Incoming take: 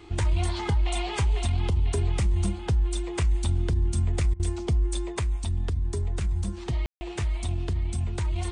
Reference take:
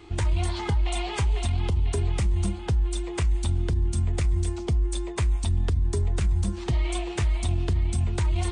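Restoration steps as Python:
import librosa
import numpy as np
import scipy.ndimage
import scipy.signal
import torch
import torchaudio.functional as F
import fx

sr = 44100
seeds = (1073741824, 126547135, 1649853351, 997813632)

y = fx.fix_ambience(x, sr, seeds[0], print_start_s=0.0, print_end_s=0.5, start_s=6.86, end_s=7.01)
y = fx.fix_interpolate(y, sr, at_s=(4.34,), length_ms=55.0)
y = fx.gain(y, sr, db=fx.steps((0.0, 0.0), (5.19, 3.5)))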